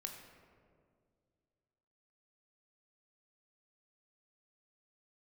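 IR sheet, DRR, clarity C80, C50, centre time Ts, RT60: 3.0 dB, 6.5 dB, 5.0 dB, 45 ms, 2.1 s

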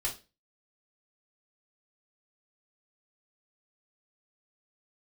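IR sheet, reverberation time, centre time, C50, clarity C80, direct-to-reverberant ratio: 0.30 s, 17 ms, 11.5 dB, 18.5 dB, -5.0 dB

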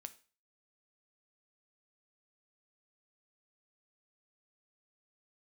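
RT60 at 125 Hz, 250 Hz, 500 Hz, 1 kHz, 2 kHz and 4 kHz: 0.40 s, 0.35 s, 0.35 s, 0.40 s, 0.40 s, 0.40 s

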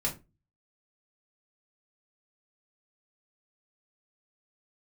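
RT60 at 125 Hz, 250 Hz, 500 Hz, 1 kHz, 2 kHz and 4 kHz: 0.55 s, 0.40 s, 0.30 s, 0.25 s, 0.20 s, 0.20 s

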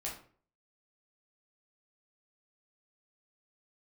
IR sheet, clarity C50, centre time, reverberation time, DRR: 6.5 dB, 29 ms, 0.45 s, -4.5 dB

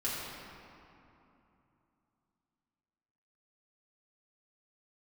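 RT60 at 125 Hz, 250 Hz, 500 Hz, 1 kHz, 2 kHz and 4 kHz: 3.6 s, 3.6 s, 2.8 s, 3.0 s, 2.3 s, 1.6 s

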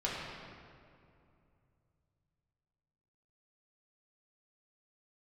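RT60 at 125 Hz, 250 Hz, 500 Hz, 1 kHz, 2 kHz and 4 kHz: 4.1 s, 3.0 s, 2.7 s, 2.4 s, 2.0 s, 1.5 s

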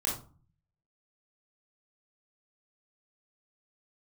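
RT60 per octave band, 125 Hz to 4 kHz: 0.85 s, 0.65 s, 0.40 s, 0.40 s, 0.25 s, 0.25 s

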